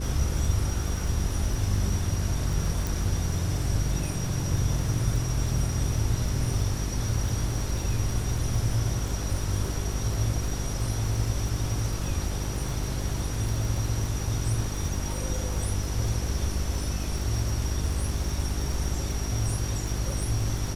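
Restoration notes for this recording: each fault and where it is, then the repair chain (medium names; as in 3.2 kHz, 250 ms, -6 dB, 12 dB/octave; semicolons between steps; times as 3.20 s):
crackle 37 per s -31 dBFS
hum 50 Hz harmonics 8 -32 dBFS
2.87 s: pop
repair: de-click; de-hum 50 Hz, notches 8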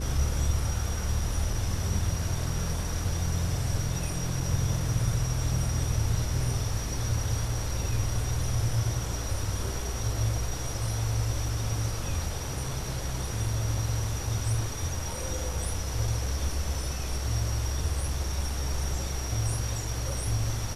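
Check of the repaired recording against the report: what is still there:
nothing left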